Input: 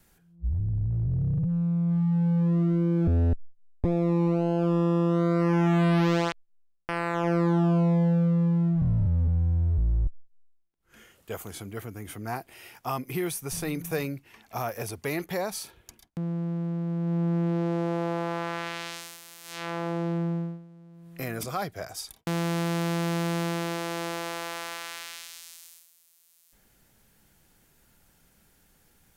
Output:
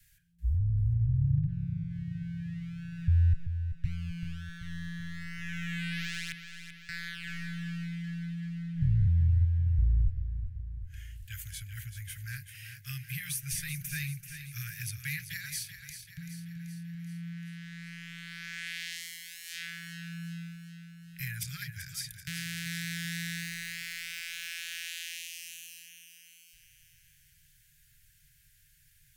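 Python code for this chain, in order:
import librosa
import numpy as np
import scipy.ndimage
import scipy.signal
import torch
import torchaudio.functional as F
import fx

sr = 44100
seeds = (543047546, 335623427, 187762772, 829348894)

p1 = np.clip(x, -10.0 ** (-19.0 / 20.0), 10.0 ** (-19.0 / 20.0))
p2 = scipy.signal.sosfilt(scipy.signal.cheby1(5, 1.0, [150.0, 1600.0], 'bandstop', fs=sr, output='sos'), p1)
y = p2 + fx.echo_feedback(p2, sr, ms=385, feedback_pct=56, wet_db=-10, dry=0)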